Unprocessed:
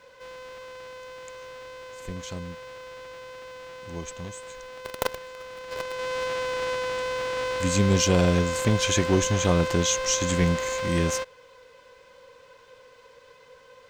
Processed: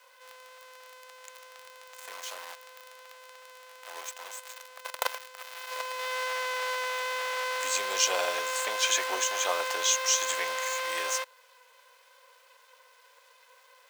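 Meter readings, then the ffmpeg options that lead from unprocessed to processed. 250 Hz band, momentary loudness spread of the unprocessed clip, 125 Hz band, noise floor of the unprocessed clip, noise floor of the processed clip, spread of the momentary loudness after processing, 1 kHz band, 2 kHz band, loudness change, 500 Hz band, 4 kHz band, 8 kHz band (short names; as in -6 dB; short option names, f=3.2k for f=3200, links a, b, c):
-29.0 dB, 20 LU, under -40 dB, -54 dBFS, -60 dBFS, 23 LU, 0.0 dB, +0.5 dB, -4.0 dB, -8.5 dB, 0.0 dB, 0.0 dB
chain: -af "acrusher=bits=7:dc=4:mix=0:aa=0.000001,highpass=f=640:w=0.5412,highpass=f=640:w=1.3066"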